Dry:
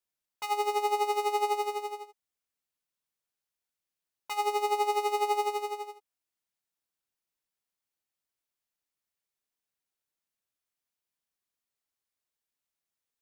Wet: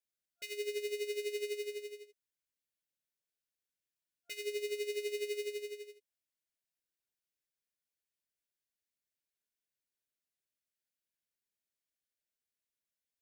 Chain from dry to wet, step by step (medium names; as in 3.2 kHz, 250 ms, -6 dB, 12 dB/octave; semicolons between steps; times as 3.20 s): FFT band-reject 690–1400 Hz; trim -5 dB